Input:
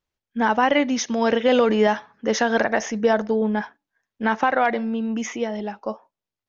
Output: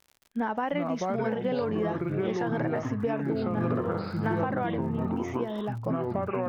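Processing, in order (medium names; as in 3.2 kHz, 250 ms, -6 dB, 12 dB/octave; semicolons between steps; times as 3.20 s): ever faster or slower copies 242 ms, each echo -5 st, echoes 3; low-pass 1.4 kHz 6 dB/octave; crackle 58 per s -38 dBFS; compression, threshold -23 dBFS, peak gain reduction 11 dB; 3.50–4.44 s: flutter echo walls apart 11.3 m, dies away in 0.67 s; trim -2.5 dB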